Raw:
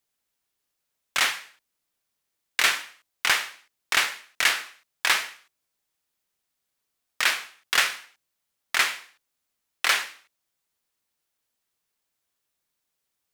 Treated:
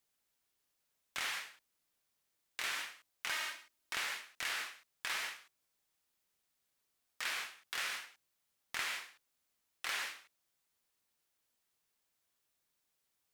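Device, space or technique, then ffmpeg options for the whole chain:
de-esser from a sidechain: -filter_complex "[0:a]asettb=1/sr,asplit=3[s0][s1][s2];[s0]atrim=end=3.304[s3];[s1]atrim=start=3.3:end=3.94,asetpts=PTS-STARTPTS,afade=t=in:d=0.004:c=qsin,afade=t=out:st=0.636:d=0.004:c=qsin,aecho=1:1:3.2:0.66,atrim=end_sample=28224[s4];[s2]atrim=start=3.936[s5];[s3][s4]acrossfade=d=0.004:c1=hsin:c2=qsin[s6];[s6][s5]acrossfade=d=0.004:c1=qsin:c2=hsin,asplit=2[s7][s8];[s8]highpass=7000,apad=whole_len=588000[s9];[s7][s9]sidechaincompress=threshold=0.00631:ratio=6:attack=1.1:release=23,volume=0.794"

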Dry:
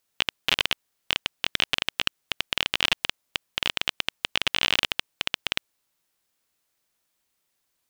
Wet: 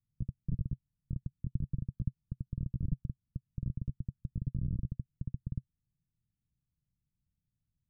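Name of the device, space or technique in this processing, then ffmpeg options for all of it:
the neighbour's flat through the wall: -af "lowpass=f=160:w=0.5412,lowpass=f=160:w=1.3066,equalizer=f=130:t=o:w=0.47:g=4,volume=3.76"

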